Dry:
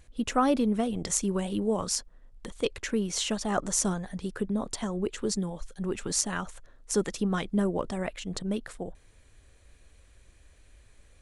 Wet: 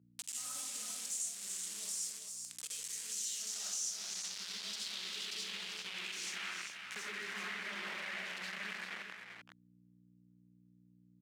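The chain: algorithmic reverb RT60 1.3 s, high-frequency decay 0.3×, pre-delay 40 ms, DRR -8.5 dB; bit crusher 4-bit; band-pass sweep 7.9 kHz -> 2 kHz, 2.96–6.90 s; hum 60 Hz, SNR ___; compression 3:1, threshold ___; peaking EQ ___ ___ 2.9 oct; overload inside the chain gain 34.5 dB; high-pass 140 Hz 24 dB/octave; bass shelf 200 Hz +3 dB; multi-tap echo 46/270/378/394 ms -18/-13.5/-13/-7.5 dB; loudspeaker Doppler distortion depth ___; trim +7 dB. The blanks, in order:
30 dB, -50 dBFS, 560 Hz, -7.5 dB, 0.27 ms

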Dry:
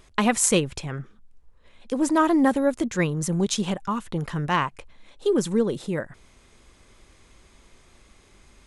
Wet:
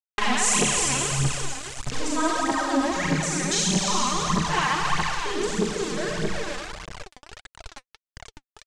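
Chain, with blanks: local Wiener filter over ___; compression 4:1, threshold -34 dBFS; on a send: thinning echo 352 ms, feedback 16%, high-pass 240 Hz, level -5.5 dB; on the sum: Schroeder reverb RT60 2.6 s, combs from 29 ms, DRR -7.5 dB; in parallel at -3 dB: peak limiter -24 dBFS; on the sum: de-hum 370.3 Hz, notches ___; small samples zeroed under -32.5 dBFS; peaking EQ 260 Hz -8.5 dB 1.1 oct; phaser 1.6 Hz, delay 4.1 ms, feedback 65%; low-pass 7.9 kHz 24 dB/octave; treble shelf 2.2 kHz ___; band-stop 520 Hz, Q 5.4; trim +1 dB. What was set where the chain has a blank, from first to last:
15 samples, 19, +6 dB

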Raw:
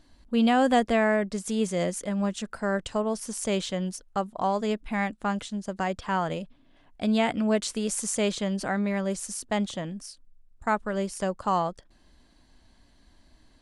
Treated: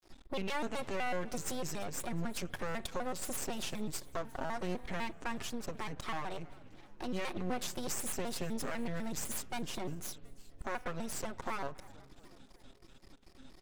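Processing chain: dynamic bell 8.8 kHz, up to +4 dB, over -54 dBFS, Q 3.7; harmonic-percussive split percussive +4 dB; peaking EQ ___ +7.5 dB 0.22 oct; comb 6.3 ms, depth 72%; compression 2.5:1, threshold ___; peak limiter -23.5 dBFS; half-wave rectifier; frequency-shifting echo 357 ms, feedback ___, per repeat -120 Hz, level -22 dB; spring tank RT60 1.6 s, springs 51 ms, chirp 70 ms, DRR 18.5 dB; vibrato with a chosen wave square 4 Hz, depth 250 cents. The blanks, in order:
310 Hz, -34 dBFS, 60%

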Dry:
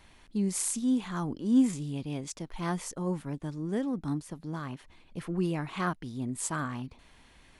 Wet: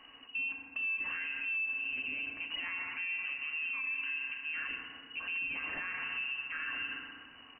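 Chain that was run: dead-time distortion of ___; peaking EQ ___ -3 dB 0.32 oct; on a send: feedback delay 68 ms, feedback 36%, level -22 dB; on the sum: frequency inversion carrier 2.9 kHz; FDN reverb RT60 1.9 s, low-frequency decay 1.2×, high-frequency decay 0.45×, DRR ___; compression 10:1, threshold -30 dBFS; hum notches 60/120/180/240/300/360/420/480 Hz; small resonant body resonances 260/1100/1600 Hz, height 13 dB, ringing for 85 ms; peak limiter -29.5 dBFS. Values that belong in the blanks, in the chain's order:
0.12 ms, 86 Hz, 2.5 dB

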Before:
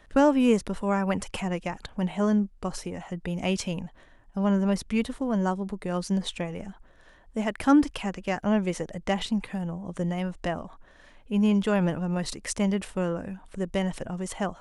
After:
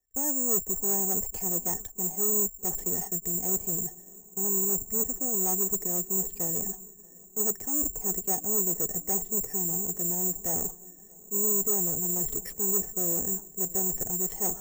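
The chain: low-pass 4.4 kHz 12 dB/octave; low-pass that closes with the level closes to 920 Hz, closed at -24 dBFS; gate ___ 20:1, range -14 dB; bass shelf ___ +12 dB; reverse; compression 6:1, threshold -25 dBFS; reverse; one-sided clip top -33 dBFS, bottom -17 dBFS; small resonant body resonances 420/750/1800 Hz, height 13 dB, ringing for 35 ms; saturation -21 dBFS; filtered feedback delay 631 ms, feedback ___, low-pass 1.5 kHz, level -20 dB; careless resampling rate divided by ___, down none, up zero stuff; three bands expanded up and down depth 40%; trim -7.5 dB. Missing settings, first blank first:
-41 dBFS, 410 Hz, 84%, 6×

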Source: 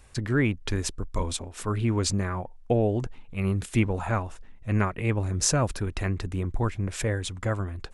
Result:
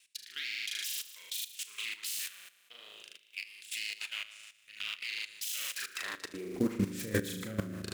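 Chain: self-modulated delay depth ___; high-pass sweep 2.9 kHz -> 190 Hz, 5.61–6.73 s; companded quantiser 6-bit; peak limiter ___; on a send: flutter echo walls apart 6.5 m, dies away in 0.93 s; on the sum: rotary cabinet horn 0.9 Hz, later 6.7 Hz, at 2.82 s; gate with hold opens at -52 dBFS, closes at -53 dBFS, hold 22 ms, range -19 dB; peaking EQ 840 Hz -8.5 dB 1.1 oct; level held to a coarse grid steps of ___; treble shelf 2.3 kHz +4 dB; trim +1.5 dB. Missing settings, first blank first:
0.36 ms, -17 dBFS, 14 dB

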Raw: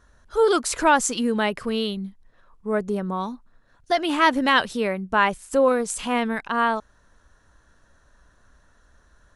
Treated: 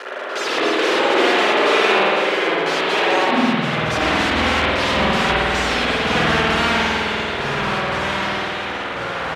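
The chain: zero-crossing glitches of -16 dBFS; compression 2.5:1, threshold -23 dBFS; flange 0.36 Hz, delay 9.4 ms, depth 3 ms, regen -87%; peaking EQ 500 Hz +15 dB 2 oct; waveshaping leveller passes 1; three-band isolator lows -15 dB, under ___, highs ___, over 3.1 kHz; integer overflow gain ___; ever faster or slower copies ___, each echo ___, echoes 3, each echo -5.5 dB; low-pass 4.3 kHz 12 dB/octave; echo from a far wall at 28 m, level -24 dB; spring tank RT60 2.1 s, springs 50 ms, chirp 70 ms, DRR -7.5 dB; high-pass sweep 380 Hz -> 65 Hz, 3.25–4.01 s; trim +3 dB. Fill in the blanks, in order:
170 Hz, -16 dB, 22 dB, 189 ms, -3 st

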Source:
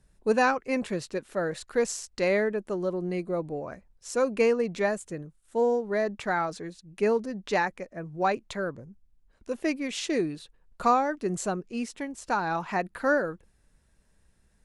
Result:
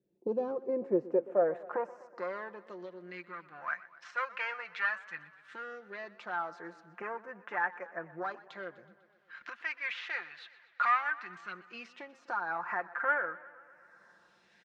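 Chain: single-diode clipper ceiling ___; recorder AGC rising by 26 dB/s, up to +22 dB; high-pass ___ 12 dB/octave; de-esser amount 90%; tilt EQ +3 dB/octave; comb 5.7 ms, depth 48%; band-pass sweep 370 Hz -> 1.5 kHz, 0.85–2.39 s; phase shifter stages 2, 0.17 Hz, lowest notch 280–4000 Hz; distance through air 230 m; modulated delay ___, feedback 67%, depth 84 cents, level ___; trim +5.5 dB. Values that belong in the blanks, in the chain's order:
-22.5 dBFS, 84 Hz, 124 ms, -19 dB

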